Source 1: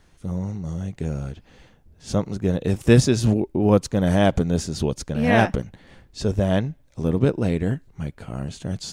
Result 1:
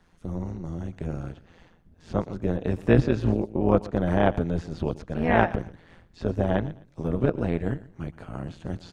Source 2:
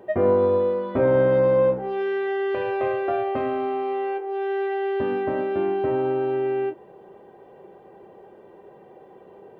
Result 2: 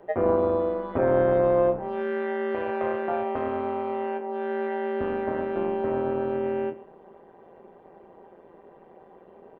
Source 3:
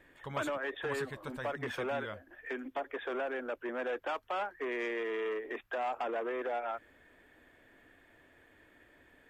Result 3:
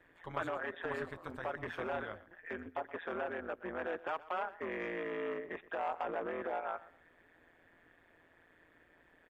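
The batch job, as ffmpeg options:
-filter_complex "[0:a]highshelf=f=4.9k:g=-6,aecho=1:1:122|244:0.119|0.0297,acrossover=split=100|1500|3100[a][b][c][d];[b]crystalizer=i=9.5:c=0[e];[a][e][c][d]amix=inputs=4:normalize=0,acrossover=split=3500[f][g];[g]acompressor=threshold=-55dB:ratio=4:attack=1:release=60[h];[f][h]amix=inputs=2:normalize=0,tremolo=f=170:d=0.788,volume=-1.5dB"

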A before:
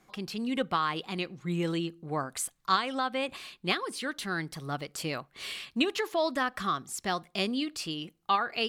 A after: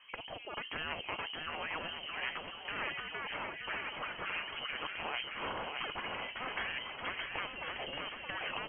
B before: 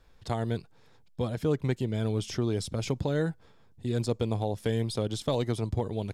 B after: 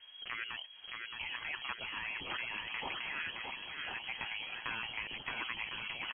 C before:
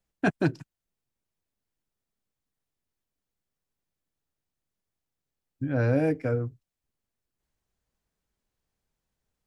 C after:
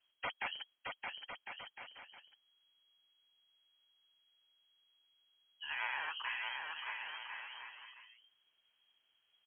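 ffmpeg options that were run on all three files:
-af "afftfilt=real='re*lt(hypot(re,im),0.0501)':imag='im*lt(hypot(re,im),0.0501)':win_size=1024:overlap=0.75,aecho=1:1:620|1054|1358|1570|1719:0.631|0.398|0.251|0.158|0.1,lowpass=f=2.8k:t=q:w=0.5098,lowpass=f=2.8k:t=q:w=0.6013,lowpass=f=2.8k:t=q:w=0.9,lowpass=f=2.8k:t=q:w=2.563,afreqshift=-3300,volume=4.5dB"

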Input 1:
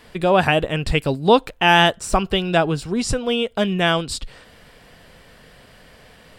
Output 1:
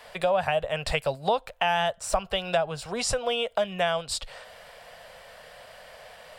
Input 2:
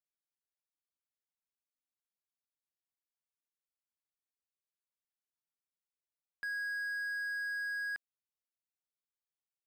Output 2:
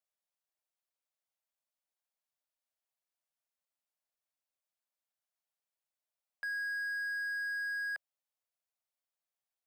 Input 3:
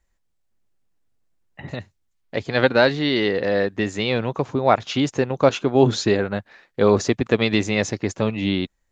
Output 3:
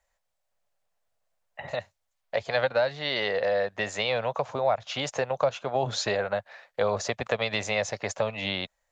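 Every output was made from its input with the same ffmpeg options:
-filter_complex "[0:a]lowshelf=f=440:t=q:w=3:g=-10.5,acrossover=split=180[a][b];[b]acompressor=threshold=-24dB:ratio=4[c];[a][c]amix=inputs=2:normalize=0"

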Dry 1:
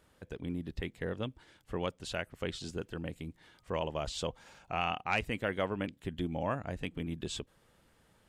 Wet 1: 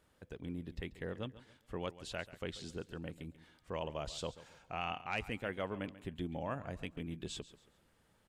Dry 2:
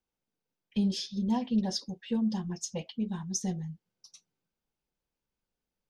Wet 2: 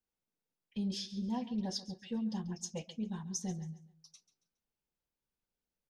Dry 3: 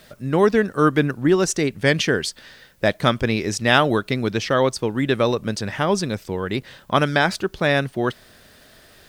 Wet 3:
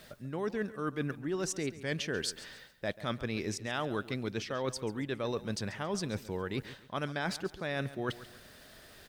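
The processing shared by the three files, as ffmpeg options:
-af "areverse,acompressor=threshold=-27dB:ratio=6,areverse,aecho=1:1:138|276|414:0.158|0.0523|0.0173,volume=-5dB"

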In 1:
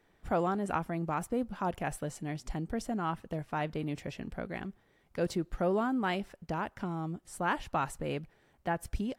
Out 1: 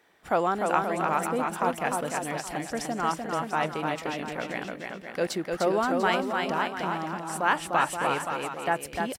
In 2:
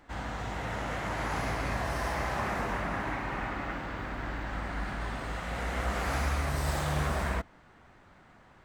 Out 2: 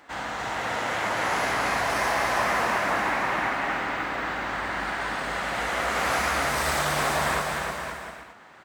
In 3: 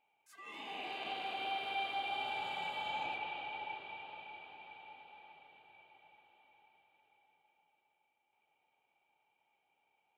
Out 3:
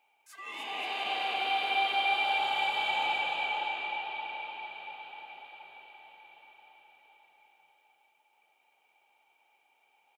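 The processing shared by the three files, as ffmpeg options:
-filter_complex "[0:a]highpass=f=610:p=1,asplit=2[a][b];[b]aecho=0:1:300|525|693.8|820.3|915.2:0.631|0.398|0.251|0.158|0.1[c];[a][c]amix=inputs=2:normalize=0,volume=8.5dB"

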